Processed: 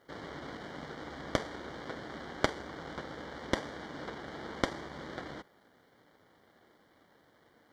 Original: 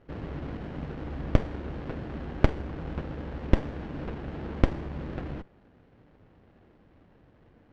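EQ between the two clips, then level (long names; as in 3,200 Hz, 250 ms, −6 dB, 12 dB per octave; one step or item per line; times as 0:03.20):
high-pass filter 720 Hz 6 dB per octave
Butterworth band-reject 2,600 Hz, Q 3.3
high-shelf EQ 3,400 Hz +11.5 dB
+1.5 dB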